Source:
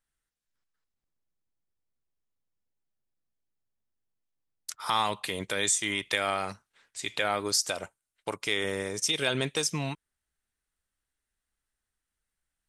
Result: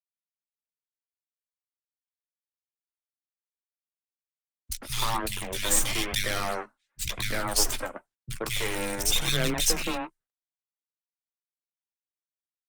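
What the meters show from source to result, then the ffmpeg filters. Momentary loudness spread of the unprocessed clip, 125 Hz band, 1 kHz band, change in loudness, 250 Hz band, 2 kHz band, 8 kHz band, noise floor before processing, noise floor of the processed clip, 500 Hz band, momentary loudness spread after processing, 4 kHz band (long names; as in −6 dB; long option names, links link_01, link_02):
14 LU, +3.0 dB, −1.5 dB, +1.5 dB, +1.0 dB, −0.5 dB, +3.5 dB, below −85 dBFS, below −85 dBFS, −1.5 dB, 14 LU, +1.5 dB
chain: -filter_complex "[0:a]agate=range=-33dB:threshold=-54dB:ratio=3:detection=peak,highshelf=frequency=3500:gain=8,asplit=2[link_01][link_02];[link_02]acrusher=bits=3:mix=0:aa=0.000001,volume=-6dB[link_03];[link_01][link_03]amix=inputs=2:normalize=0,asoftclip=type=tanh:threshold=-12.5dB,asplit=2[link_04][link_05];[link_05]adelay=16,volume=-10dB[link_06];[link_04][link_06]amix=inputs=2:normalize=0,aeval=exprs='0.316*(cos(1*acos(clip(val(0)/0.316,-1,1)))-cos(1*PI/2))+0.00562*(cos(4*acos(clip(val(0)/0.316,-1,1)))-cos(4*PI/2))+0.00891*(cos(7*acos(clip(val(0)/0.316,-1,1)))-cos(7*PI/2))+0.0708*(cos(8*acos(clip(val(0)/0.316,-1,1)))-cos(8*PI/2))':channel_layout=same,flanger=delay=0.5:depth=3.3:regen=-12:speed=0.97:shape=sinusoidal,acrossover=split=160|2000[link_07][link_08][link_09];[link_09]adelay=30[link_10];[link_08]adelay=130[link_11];[link_07][link_11][link_10]amix=inputs=3:normalize=0,afreqshift=14" -ar 48000 -c:a libopus -b:a 24k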